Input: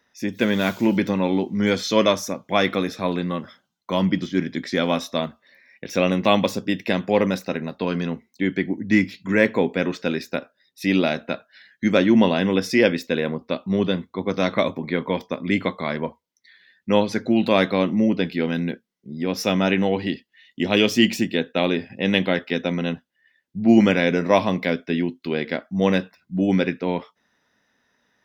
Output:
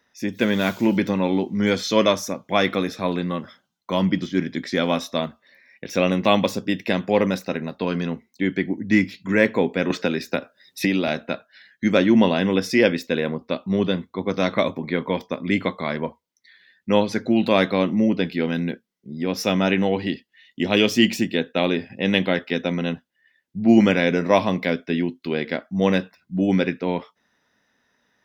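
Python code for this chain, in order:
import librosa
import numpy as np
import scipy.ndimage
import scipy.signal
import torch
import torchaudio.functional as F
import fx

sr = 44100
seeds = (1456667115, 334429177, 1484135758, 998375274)

y = fx.band_squash(x, sr, depth_pct=100, at=(9.9, 11.08))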